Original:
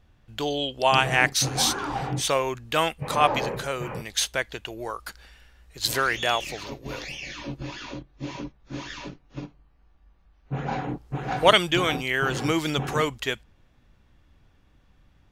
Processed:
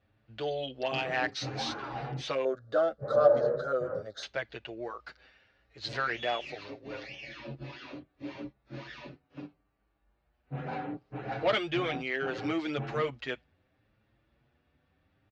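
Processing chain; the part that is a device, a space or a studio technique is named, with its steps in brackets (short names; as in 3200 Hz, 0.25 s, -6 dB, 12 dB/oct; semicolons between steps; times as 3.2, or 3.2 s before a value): barber-pole flanger into a guitar amplifier (endless flanger 7.2 ms +0.72 Hz; soft clip -18 dBFS, distortion -12 dB; speaker cabinet 98–4300 Hz, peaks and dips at 180 Hz -6 dB, 600 Hz +3 dB, 1000 Hz -5 dB, 3300 Hz -5 dB); 2.45–4.23 EQ curve 360 Hz 0 dB, 570 Hz +13 dB, 900 Hz -10 dB, 1400 Hz +7 dB, 2500 Hz -29 dB, 3600 Hz -6 dB, 11000 Hz 0 dB; gain -3 dB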